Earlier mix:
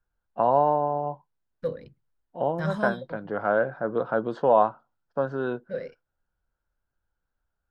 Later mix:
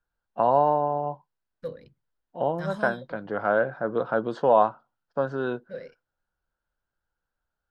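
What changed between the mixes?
second voice -5.5 dB; master: add high shelf 3000 Hz +6.5 dB

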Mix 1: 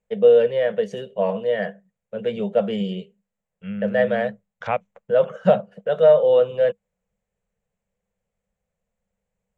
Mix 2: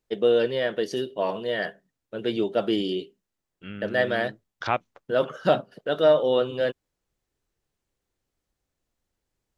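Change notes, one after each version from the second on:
master: remove EQ curve 140 Hz 0 dB, 200 Hz +12 dB, 300 Hz -24 dB, 480 Hz +8 dB, 810 Hz +1 dB, 1300 Hz -3 dB, 2300 Hz +1 dB, 4900 Hz -15 dB, 7400 Hz -1 dB, 11000 Hz -15 dB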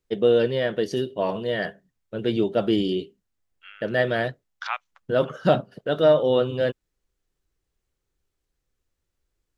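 first voice: remove HPF 320 Hz 6 dB/oct; second voice: add HPF 1000 Hz 24 dB/oct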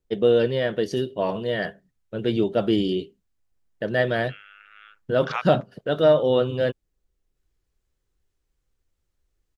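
second voice: entry +0.65 s; master: add low shelf 92 Hz +5.5 dB

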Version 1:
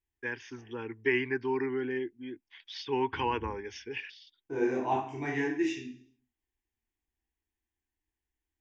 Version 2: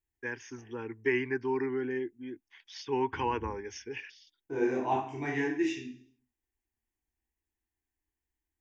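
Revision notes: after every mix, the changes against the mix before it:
first voice: remove synth low-pass 3900 Hz, resonance Q 2.3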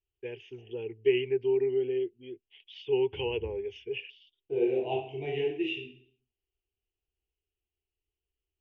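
master: add EQ curve 150 Hz 0 dB, 280 Hz -13 dB, 400 Hz +7 dB, 710 Hz -1 dB, 1100 Hz -23 dB, 1700 Hz -20 dB, 2900 Hz +11 dB, 5100 Hz -22 dB, 9400 Hz -29 dB

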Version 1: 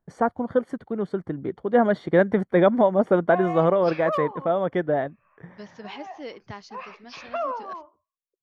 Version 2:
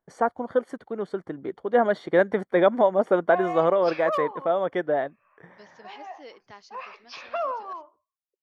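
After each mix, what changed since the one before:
second voice -6.5 dB; master: add tone controls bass -12 dB, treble +3 dB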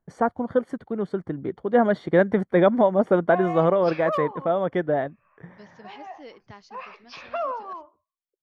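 master: add tone controls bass +12 dB, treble -3 dB

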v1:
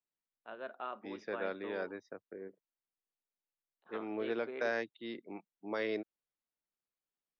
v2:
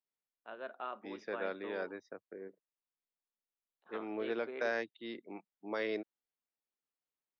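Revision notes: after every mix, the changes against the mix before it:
master: add low shelf 120 Hz -8 dB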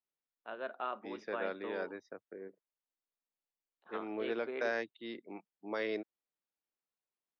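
first voice +3.5 dB

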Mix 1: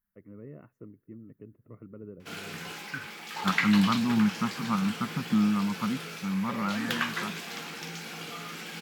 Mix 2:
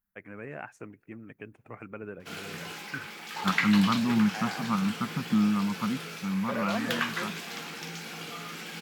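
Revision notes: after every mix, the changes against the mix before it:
first voice: remove running mean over 55 samples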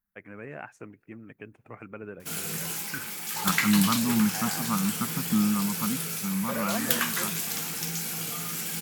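background: remove three-band isolator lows -13 dB, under 200 Hz, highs -21 dB, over 4600 Hz

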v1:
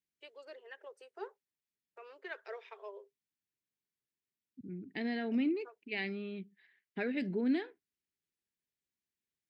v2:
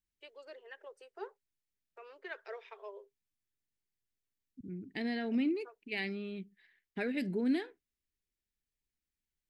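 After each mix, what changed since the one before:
second voice: remove BPF 130–4100 Hz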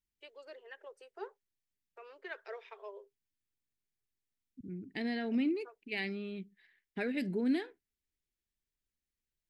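none

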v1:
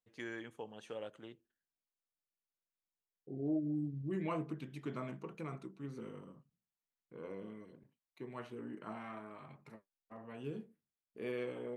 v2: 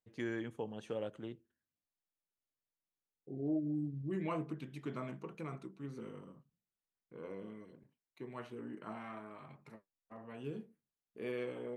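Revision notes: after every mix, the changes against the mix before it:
first voice: add low shelf 430 Hz +11 dB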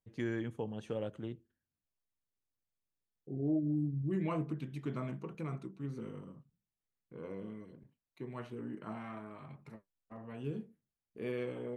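master: add low shelf 170 Hz +11 dB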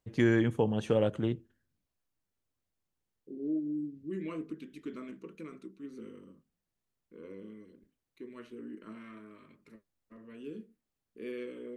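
first voice +11.0 dB; second voice: add fixed phaser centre 320 Hz, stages 4

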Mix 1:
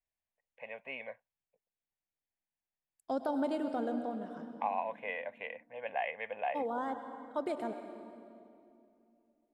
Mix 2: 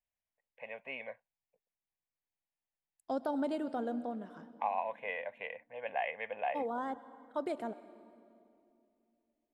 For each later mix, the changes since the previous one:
second voice: send -8.5 dB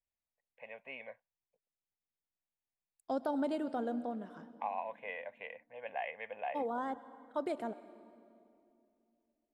first voice -4.0 dB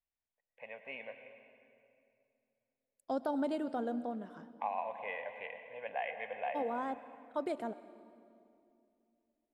first voice: send on

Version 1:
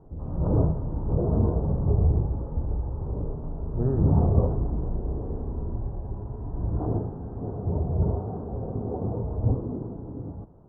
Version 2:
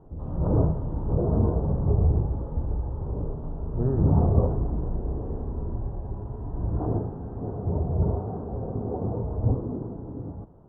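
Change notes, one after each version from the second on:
background: remove air absorption 330 m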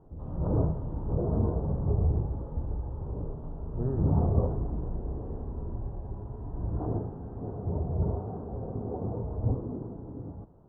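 speech -5.5 dB; background -4.5 dB

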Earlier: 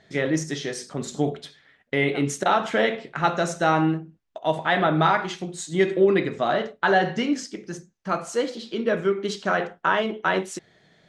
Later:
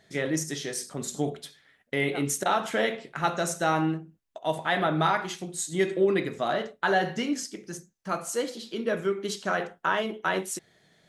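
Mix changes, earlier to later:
first voice -5.0 dB; master: remove air absorption 88 m

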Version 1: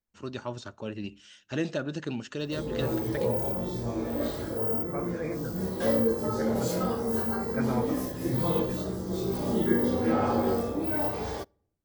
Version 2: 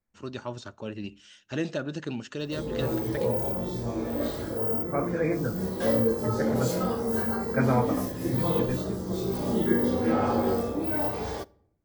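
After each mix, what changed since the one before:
second voice +7.5 dB; background: send +9.5 dB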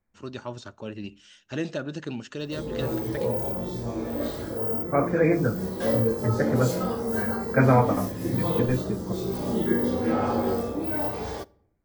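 second voice +6.0 dB

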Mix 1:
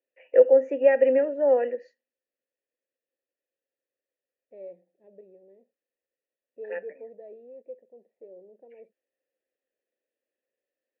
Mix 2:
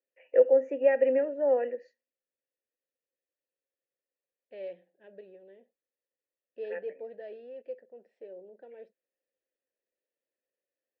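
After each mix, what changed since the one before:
first voice -4.5 dB; second voice: remove running mean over 29 samples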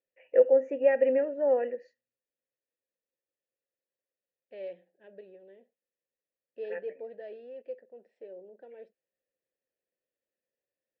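first voice: remove steep high-pass 230 Hz 48 dB/oct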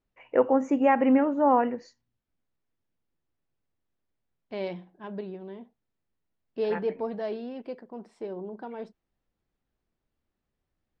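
first voice -4.5 dB; master: remove vowel filter e

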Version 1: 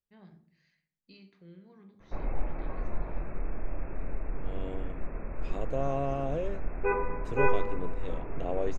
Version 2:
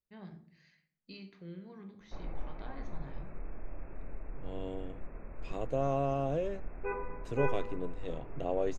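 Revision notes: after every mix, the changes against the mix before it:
first voice +5.5 dB; background -8.5 dB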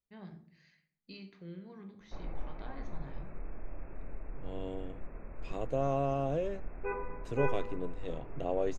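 none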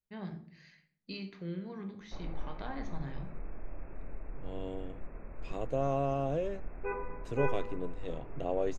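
first voice +7.0 dB

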